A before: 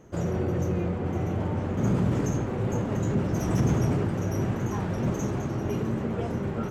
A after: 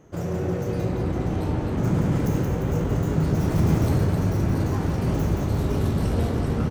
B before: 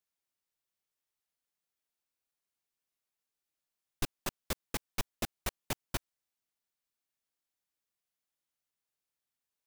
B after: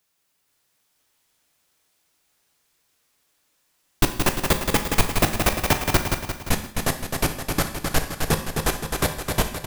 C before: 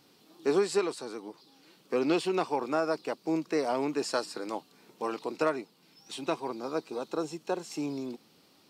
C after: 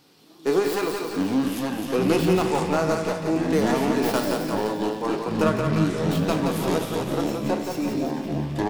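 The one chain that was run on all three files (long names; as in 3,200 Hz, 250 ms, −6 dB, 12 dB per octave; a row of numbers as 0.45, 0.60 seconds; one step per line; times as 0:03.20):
stylus tracing distortion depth 0.19 ms
on a send: repeating echo 174 ms, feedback 53%, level −5 dB
on the sum: delay with pitch and tempo change per echo 478 ms, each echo −7 semitones, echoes 2
tuned comb filter 53 Hz, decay 0.6 s, harmonics all, mix 50%
reverb whose tail is shaped and stops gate 200 ms falling, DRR 8.5 dB
loudness normalisation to −24 LKFS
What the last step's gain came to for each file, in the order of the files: +3.5, +21.0, +8.5 decibels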